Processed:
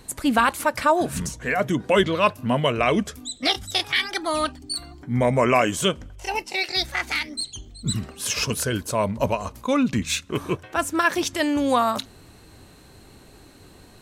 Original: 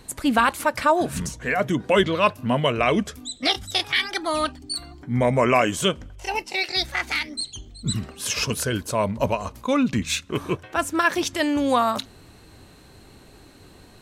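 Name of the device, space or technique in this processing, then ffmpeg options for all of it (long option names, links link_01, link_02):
exciter from parts: -filter_complex "[0:a]asplit=2[link_01][link_02];[link_02]highpass=4700,asoftclip=type=tanh:threshold=-29.5dB,volume=-10dB[link_03];[link_01][link_03]amix=inputs=2:normalize=0"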